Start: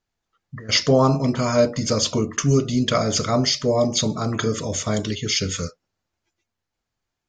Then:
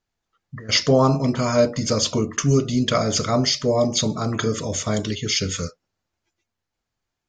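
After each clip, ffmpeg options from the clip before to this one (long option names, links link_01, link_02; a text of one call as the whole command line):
ffmpeg -i in.wav -af anull out.wav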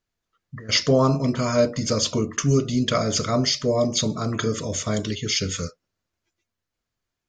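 ffmpeg -i in.wav -af "equalizer=frequency=820:width=6.6:gain=-8,volume=-1.5dB" out.wav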